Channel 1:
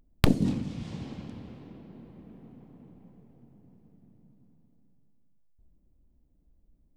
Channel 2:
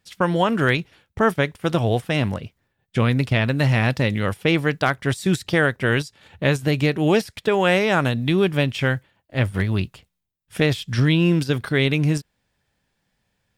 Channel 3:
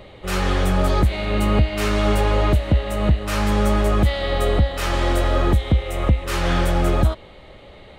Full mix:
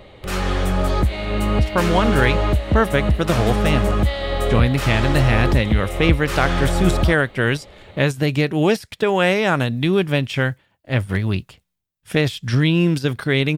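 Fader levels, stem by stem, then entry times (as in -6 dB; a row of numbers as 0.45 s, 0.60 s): -17.5 dB, +1.0 dB, -1.0 dB; 0.00 s, 1.55 s, 0.00 s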